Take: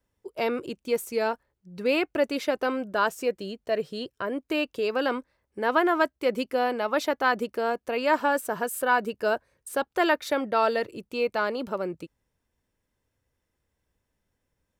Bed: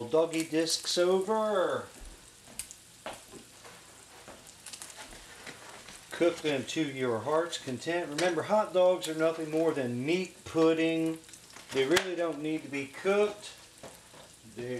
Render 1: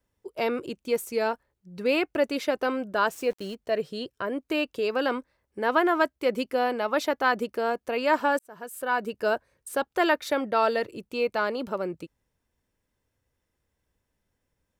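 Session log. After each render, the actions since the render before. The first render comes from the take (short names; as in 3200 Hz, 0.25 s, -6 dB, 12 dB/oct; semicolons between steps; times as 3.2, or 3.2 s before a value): 3.12–3.55 sample gate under -44.5 dBFS; 8.39–9.21 fade in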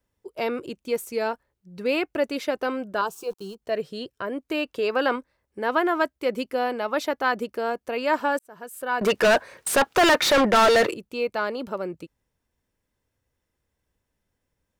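3.01–3.62 fixed phaser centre 390 Hz, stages 8; 4.66–5.16 bell 1200 Hz +5 dB 2.7 oct; 9.01–10.94 overdrive pedal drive 32 dB, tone 4100 Hz, clips at -10.5 dBFS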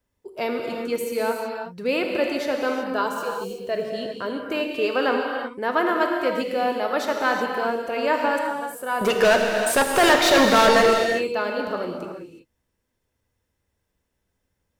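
non-linear reverb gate 0.4 s flat, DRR 1.5 dB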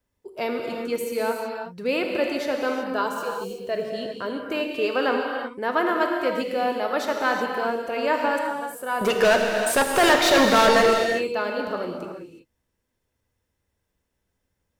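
gain -1 dB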